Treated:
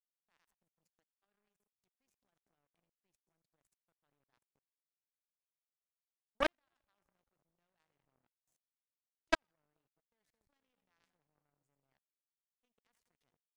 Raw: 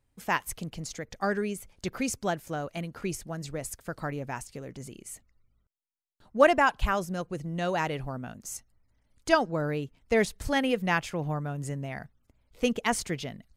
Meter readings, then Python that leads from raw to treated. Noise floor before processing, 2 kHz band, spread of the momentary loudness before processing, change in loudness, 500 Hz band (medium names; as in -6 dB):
-73 dBFS, -15.0 dB, 15 LU, -7.0 dB, -19.0 dB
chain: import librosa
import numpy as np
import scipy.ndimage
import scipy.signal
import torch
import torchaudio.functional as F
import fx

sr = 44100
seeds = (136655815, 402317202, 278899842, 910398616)

y = fx.echo_split(x, sr, split_hz=890.0, low_ms=218, high_ms=84, feedback_pct=52, wet_db=-10.0)
y = fx.level_steps(y, sr, step_db=19)
y = fx.power_curve(y, sr, exponent=3.0)